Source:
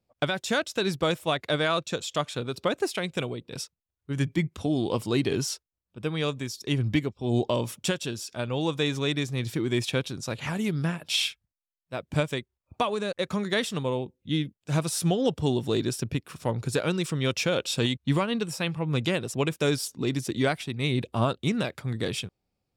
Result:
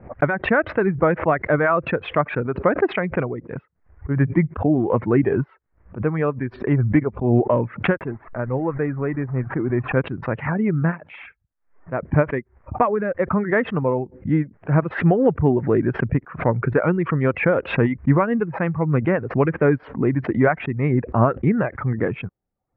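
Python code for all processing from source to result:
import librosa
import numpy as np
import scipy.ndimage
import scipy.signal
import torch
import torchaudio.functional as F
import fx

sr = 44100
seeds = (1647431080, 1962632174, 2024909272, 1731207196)

y = fx.chain(x, sr, fx.delta_hold(step_db=-40.0),
    fx.lowpass(hz=2000.0, slope=12),
    fx.comb_fb(f0_hz=130.0, decay_s=0.17, harmonics='all', damping=0.0, mix_pct=40), at=(7.97, 9.97))
y = fx.dereverb_blind(y, sr, rt60_s=0.57)
y = scipy.signal.sosfilt(scipy.signal.butter(8, 2000.0, 'lowpass', fs=sr, output='sos'), y)
y = fx.pre_swell(y, sr, db_per_s=150.0)
y = y * librosa.db_to_amplitude(8.5)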